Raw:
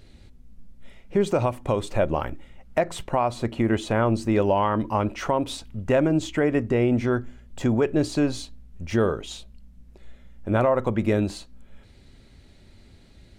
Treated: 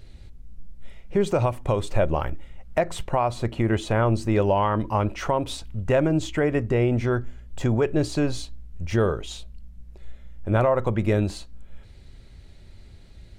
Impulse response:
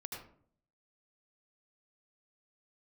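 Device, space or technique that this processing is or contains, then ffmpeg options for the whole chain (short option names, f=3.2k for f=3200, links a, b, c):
low shelf boost with a cut just above: -af "lowshelf=f=110:g=7.5,equalizer=f=250:t=o:w=0.55:g=-5.5"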